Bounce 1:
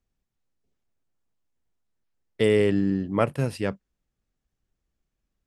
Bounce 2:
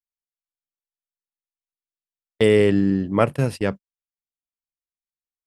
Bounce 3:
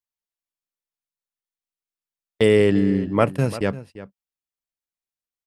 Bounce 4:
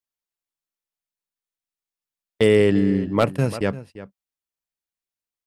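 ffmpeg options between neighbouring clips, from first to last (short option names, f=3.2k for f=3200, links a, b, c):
-af "agate=range=-37dB:threshold=-32dB:ratio=16:detection=peak,volume=4.5dB"
-filter_complex "[0:a]asplit=2[a][b];[b]adelay=344,volume=-15dB,highshelf=f=4k:g=-7.74[c];[a][c]amix=inputs=2:normalize=0"
-af "aeval=exprs='0.562*(abs(mod(val(0)/0.562+3,4)-2)-1)':c=same"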